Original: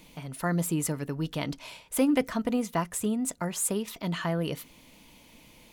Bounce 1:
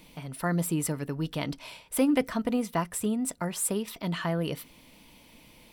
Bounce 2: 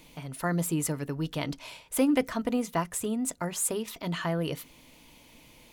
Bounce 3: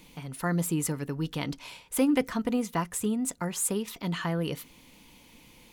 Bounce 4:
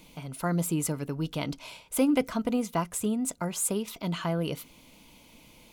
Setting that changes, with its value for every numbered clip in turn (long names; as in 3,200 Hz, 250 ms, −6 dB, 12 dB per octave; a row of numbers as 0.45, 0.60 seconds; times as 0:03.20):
notch filter, centre frequency: 6,700, 200, 630, 1,800 Hertz